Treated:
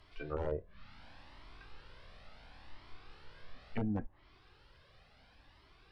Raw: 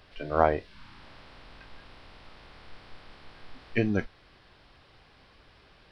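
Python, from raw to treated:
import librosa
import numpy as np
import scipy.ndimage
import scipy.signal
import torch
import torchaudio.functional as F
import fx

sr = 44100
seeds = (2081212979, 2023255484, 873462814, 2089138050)

y = (np.mod(10.0 ** (14.0 / 20.0) * x + 1.0, 2.0) - 1.0) / 10.0 ** (14.0 / 20.0)
y = fx.env_lowpass_down(y, sr, base_hz=590.0, full_db=-26.5)
y = fx.comb_cascade(y, sr, direction='rising', hz=0.71)
y = y * librosa.db_to_amplitude(-2.0)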